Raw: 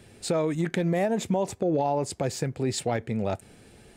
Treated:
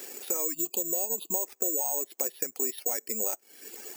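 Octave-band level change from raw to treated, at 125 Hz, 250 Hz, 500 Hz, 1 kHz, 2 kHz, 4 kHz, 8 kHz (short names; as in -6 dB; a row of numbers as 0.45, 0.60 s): under -25 dB, -14.5 dB, -10.0 dB, -10.5 dB, -10.5 dB, -7.5 dB, +10.0 dB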